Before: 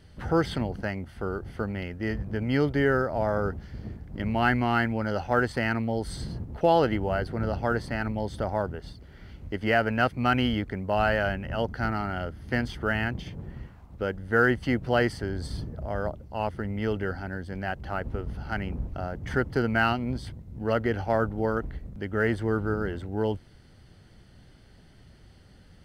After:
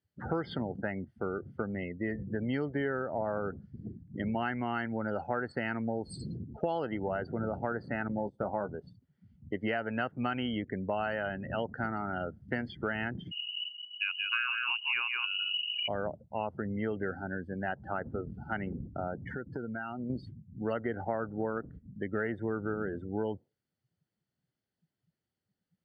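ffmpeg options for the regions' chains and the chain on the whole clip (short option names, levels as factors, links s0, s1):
-filter_complex "[0:a]asettb=1/sr,asplit=3[s0][s1][s2];[s0]atrim=end=8.084[s3];[s1]atrim=start=8.08:end=8.69,asetpts=PTS-STARTPTS,afade=t=in:d=0.004:c=qsin,afade=t=out:st=0.606:d=0.004:c=qsin,agate=range=0.282:threshold=0.02:ratio=16:release=100:detection=peak,asplit=2[s4][s5];[s5]adelay=15,volume=0.398[s6];[s4][s6]amix=inputs=2:normalize=0,atrim=end_sample=26901[s7];[s2]atrim=start=8.686[s8];[s3][s7]acrossfade=d=0.004:c1=hsin:c2=qsin[s9];[s9][s8]acrossfade=d=0.004:c1=qsin:c2=hsin,asettb=1/sr,asplit=3[s10][s11][s12];[s10]atrim=end=13.314[s13];[s11]atrim=start=13.31:end=15.88,asetpts=PTS-STARTPTS,afade=t=in:d=0.004:c=qsin,afade=t=out:st=2.566:d=0.004:c=qsin,aecho=1:1:178:0.531,atrim=end_sample=113337,lowpass=f=2600:t=q:w=0.5098,lowpass=f=2600:t=q:w=0.6013,lowpass=f=2600:t=q:w=0.9,lowpass=f=2600:t=q:w=2.563,afreqshift=-3000[s14];[s12]atrim=start=15.876[s15];[s13][s14]acrossfade=d=0.004:c1=hsin:c2=qsin[s16];[s16][s15]acrossfade=d=0.004:c1=qsin:c2=hsin,asettb=1/sr,asplit=3[s17][s18][s19];[s17]atrim=end=19.144[s20];[s18]atrim=start=19.14:end=20.1,asetpts=PTS-STARTPTS,afade=t=in:d=0.004:c=qsin,afade=t=out:st=0.956:d=0.004:c=qsin,adynamicequalizer=threshold=0.00794:dfrequency=2700:dqfactor=1.4:tfrequency=2700:tqfactor=1.4:attack=5:release=100:ratio=0.375:range=2.5:mode=cutabove:tftype=bell,acompressor=threshold=0.0282:ratio=16:attack=3.2:release=140:knee=1:detection=peak[s21];[s19]atrim=start=20.096[s22];[s20][s21]acrossfade=d=0.004:c1=hsin:c2=qsin[s23];[s23][s22]acrossfade=d=0.004:c1=qsin:c2=hsin,highpass=140,afftdn=nr=32:nf=-37,acompressor=threshold=0.0355:ratio=6"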